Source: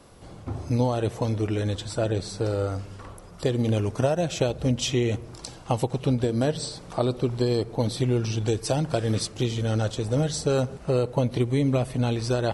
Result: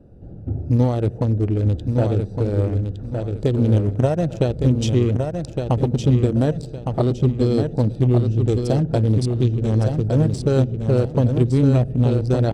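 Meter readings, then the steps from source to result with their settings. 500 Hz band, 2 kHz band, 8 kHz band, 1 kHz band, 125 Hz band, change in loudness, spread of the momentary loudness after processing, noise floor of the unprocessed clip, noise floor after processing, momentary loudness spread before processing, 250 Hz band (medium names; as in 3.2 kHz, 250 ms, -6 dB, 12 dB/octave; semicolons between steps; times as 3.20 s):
+3.5 dB, -2.0 dB, no reading, +1.0 dB, +9.0 dB, +6.5 dB, 6 LU, -44 dBFS, -35 dBFS, 7 LU, +6.5 dB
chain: local Wiener filter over 41 samples; bass shelf 430 Hz +8.5 dB; on a send: feedback delay 1162 ms, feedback 29%, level -5.5 dB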